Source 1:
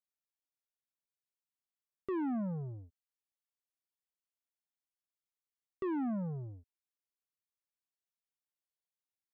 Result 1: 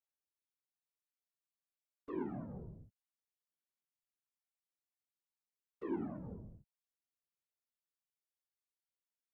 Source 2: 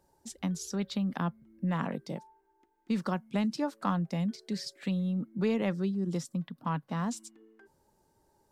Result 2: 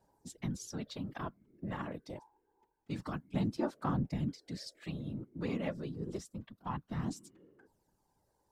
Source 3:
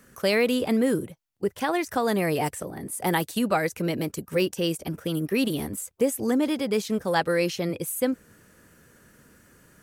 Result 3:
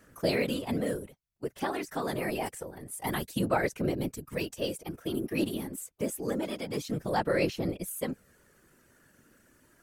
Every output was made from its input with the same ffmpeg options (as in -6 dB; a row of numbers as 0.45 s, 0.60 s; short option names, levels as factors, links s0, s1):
-af "aphaser=in_gain=1:out_gain=1:delay=3.6:decay=0.41:speed=0.27:type=sinusoidal,afftfilt=real='hypot(re,im)*cos(2*PI*random(0))':imag='hypot(re,im)*sin(2*PI*random(1))':win_size=512:overlap=0.75,volume=0.841"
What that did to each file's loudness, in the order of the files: -7.0 LU, -6.5 LU, -6.5 LU